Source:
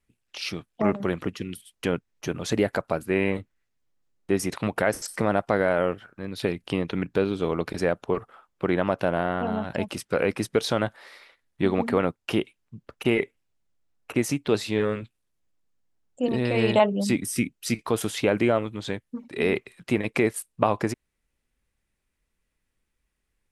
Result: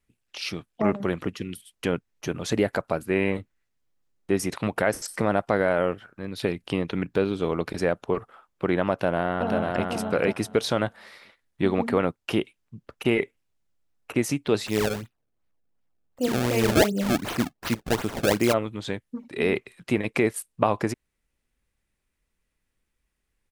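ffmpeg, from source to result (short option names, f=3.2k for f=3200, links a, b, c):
-filter_complex "[0:a]asplit=2[a][b];[b]afade=t=in:st=8.91:d=0.01,afade=t=out:st=9.83:d=0.01,aecho=0:1:490|980|1470:0.707946|0.106192|0.0159288[c];[a][c]amix=inputs=2:normalize=0,asplit=3[d][e][f];[d]afade=t=out:st=14.66:d=0.02[g];[e]acrusher=samples=26:mix=1:aa=0.000001:lfo=1:lforange=41.6:lforate=2.7,afade=t=in:st=14.66:d=0.02,afade=t=out:st=18.52:d=0.02[h];[f]afade=t=in:st=18.52:d=0.02[i];[g][h][i]amix=inputs=3:normalize=0"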